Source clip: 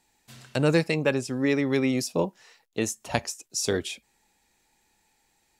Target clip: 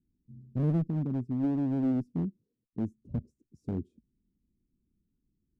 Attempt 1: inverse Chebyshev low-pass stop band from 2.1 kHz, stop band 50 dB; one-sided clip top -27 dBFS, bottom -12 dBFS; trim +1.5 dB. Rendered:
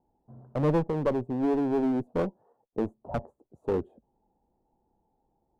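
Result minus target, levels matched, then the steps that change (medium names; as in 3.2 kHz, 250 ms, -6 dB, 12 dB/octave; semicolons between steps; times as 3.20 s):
1 kHz band +11.0 dB
change: inverse Chebyshev low-pass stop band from 720 Hz, stop band 50 dB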